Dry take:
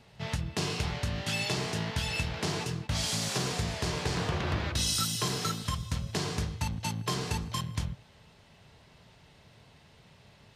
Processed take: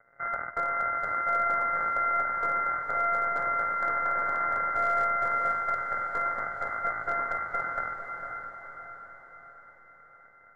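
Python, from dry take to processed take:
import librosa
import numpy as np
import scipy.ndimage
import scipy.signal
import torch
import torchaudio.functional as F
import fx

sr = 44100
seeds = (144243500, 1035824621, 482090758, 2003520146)

p1 = np.r_[np.sort(x[:len(x) // 64 * 64].reshape(-1, 64), axis=1).ravel(), x[len(x) // 64 * 64:]]
p2 = fx.highpass(p1, sr, hz=220.0, slope=6)
p3 = fx.low_shelf_res(p2, sr, hz=760.0, db=-14.0, q=3.0)
p4 = fx.leveller(p3, sr, passes=3)
p5 = (np.mod(10.0 ** (18.0 / 20.0) * p4 + 1.0, 2.0) - 1.0) / 10.0 ** (18.0 / 20.0)
p6 = p4 + F.gain(torch.from_numpy(p5), -3.5).numpy()
p7 = scipy.signal.sosfilt(scipy.signal.cheby1(6, 9, 2100.0, 'lowpass', fs=sr, output='sos'), p6)
p8 = np.clip(p7, -10.0 ** (-17.0 / 20.0), 10.0 ** (-17.0 / 20.0))
p9 = p8 + fx.echo_diffused(p8, sr, ms=511, feedback_pct=54, wet_db=-6.0, dry=0)
y = F.gain(torch.from_numpy(p9), -4.0).numpy()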